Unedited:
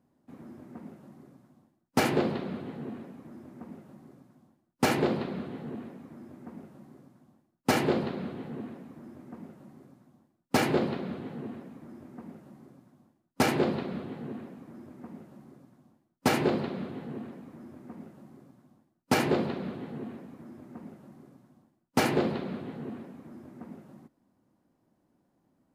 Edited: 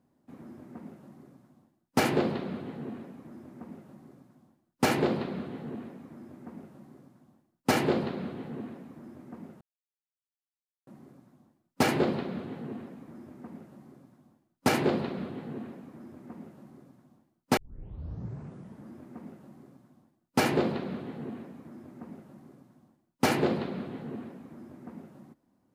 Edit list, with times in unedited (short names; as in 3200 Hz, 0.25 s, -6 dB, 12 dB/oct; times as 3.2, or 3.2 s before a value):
9.61 insert silence 1.26 s
16.31 tape start 1.39 s